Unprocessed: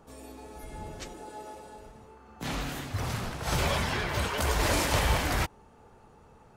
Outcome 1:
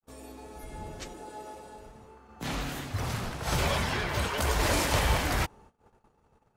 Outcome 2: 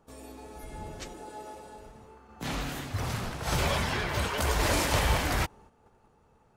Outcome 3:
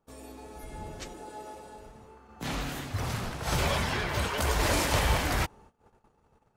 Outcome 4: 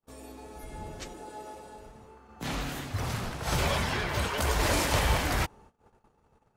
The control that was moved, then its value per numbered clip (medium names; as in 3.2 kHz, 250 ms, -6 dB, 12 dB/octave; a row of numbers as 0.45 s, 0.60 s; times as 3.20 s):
gate, range: -57 dB, -8 dB, -20 dB, -38 dB